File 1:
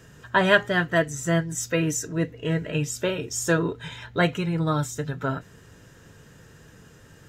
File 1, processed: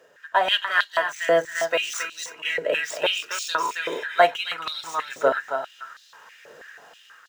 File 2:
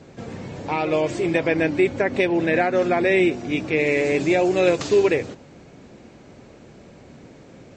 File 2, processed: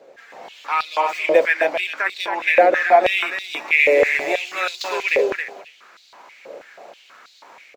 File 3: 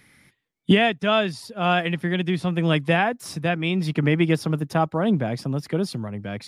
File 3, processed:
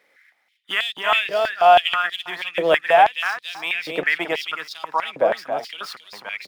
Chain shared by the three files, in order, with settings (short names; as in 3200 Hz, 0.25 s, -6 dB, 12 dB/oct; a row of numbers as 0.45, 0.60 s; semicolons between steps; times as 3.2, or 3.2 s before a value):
median filter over 5 samples; AGC gain up to 9 dB; on a send: feedback echo 0.272 s, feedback 18%, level -6 dB; on the sum: stepped high-pass 6.2 Hz 540–4000 Hz; gain -5 dB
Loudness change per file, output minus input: +1.0, +2.0, +2.5 LU